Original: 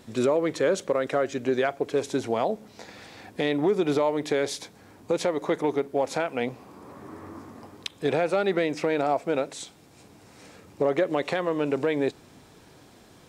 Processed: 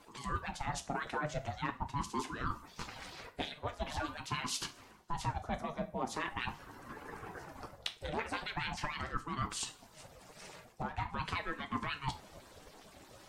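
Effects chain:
harmonic-percussive split with one part muted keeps percussive
reversed playback
downward compressor 6 to 1, threshold −37 dBFS, peak gain reduction 16.5 dB
reversed playback
coupled-rooms reverb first 0.31 s, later 1.7 s, from −26 dB, DRR 6 dB
ring modulator whose carrier an LFO sweeps 440 Hz, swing 50%, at 0.43 Hz
level +4.5 dB

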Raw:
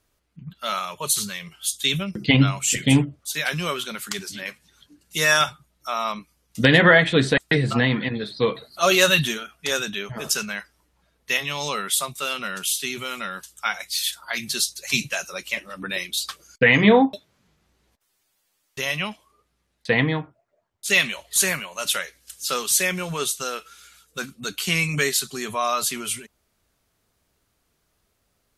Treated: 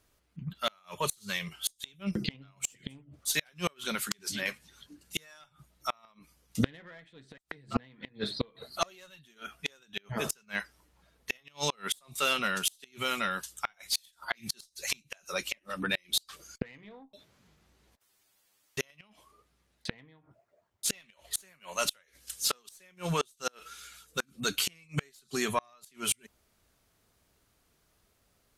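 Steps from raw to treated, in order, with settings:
one-sided soft clipper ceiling −12 dBFS
gate with flip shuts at −15 dBFS, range −35 dB

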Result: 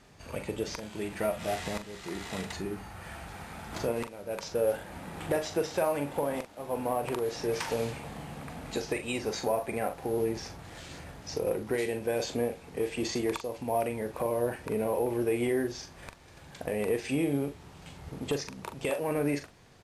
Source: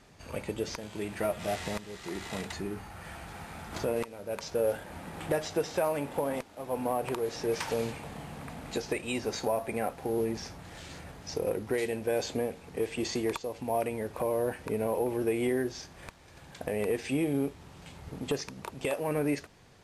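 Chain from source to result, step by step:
double-tracking delay 42 ms −9 dB

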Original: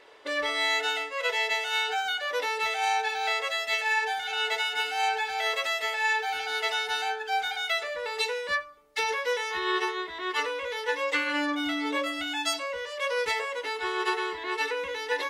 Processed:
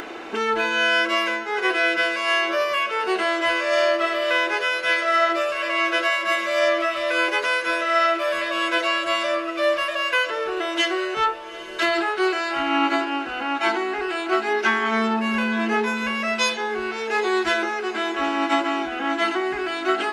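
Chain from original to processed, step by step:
speed change −24%
upward compression, threshold −30 dBFS
feedback delay with all-pass diffusion 846 ms, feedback 57%, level −15 dB
level +6.5 dB

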